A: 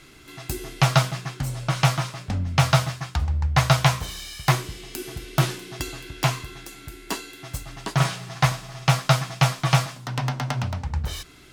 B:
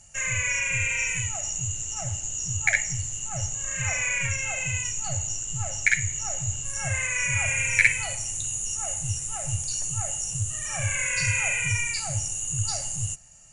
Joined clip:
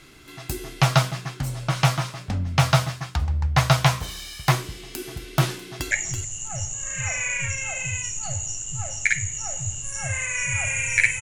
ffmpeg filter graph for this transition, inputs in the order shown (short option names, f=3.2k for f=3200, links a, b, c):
-filter_complex "[0:a]apad=whole_dur=11.21,atrim=end=11.21,atrim=end=5.912[a];[1:a]atrim=start=2.718:end=8.02[b];[a][b]acrossfade=d=0.004:c1=hsin:c2=hsin,asplit=2[c][d];[d]afade=t=in:st=5.65:d=0.01,afade=t=out:st=5.91:d=0.01,aecho=0:1:330|660:0.354813|0.0354813[e];[c][e]amix=inputs=2:normalize=0"